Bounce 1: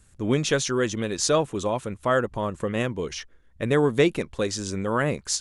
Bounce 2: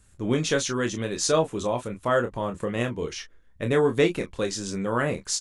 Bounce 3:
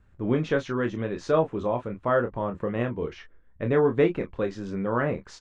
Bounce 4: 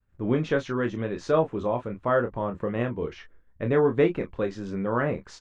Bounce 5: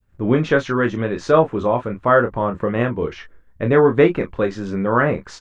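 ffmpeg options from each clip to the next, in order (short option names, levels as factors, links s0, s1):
-af "aecho=1:1:25|36:0.447|0.237,volume=0.794"
-af "lowpass=1800"
-af "agate=range=0.0224:threshold=0.00282:ratio=3:detection=peak"
-af "adynamicequalizer=threshold=0.0141:dfrequency=1400:dqfactor=1.3:tfrequency=1400:tqfactor=1.3:attack=5:release=100:ratio=0.375:range=2:mode=boostabove:tftype=bell,volume=2.37"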